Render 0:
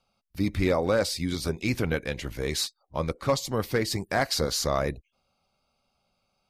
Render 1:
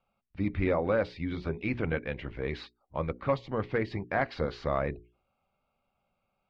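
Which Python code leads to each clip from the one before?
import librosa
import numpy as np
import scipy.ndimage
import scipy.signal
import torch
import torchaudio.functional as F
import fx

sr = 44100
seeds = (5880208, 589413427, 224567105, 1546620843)

y = scipy.signal.sosfilt(scipy.signal.butter(4, 2800.0, 'lowpass', fs=sr, output='sos'), x)
y = fx.hum_notches(y, sr, base_hz=60, count=7)
y = y * 10.0 ** (-3.0 / 20.0)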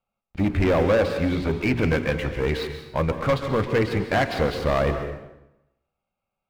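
y = fx.leveller(x, sr, passes=3)
y = fx.rev_plate(y, sr, seeds[0], rt60_s=0.9, hf_ratio=0.8, predelay_ms=120, drr_db=7.5)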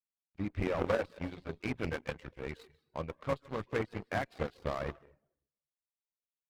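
y = fx.dereverb_blind(x, sr, rt60_s=0.57)
y = fx.cheby_harmonics(y, sr, harmonics=(3, 6), levels_db=(-10, -44), full_scale_db=-11.5)
y = y * 10.0 ** (-5.0 / 20.0)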